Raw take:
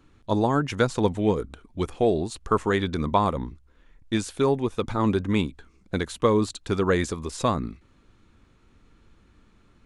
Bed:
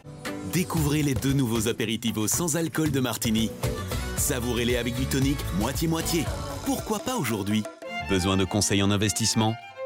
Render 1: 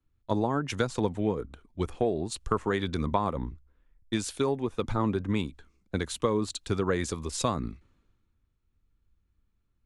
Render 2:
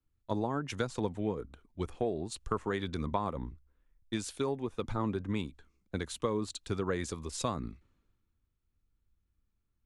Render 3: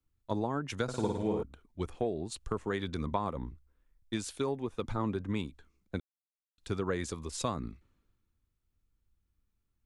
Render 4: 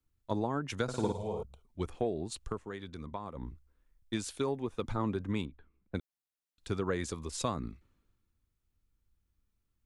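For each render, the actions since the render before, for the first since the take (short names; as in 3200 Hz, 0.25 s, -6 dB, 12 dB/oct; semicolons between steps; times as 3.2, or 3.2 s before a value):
compressor 6:1, threshold -24 dBFS, peak gain reduction 9 dB; three-band expander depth 70%
gain -5.5 dB
0.83–1.43 flutter echo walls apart 9.1 m, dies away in 0.81 s; 2.06–2.7 dynamic EQ 1200 Hz, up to -6 dB, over -48 dBFS, Q 1.3; 6–6.58 mute
1.12–1.66 fixed phaser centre 690 Hz, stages 4; 2.44–3.49 dip -8.5 dB, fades 0.18 s; 5.45–5.95 air absorption 440 m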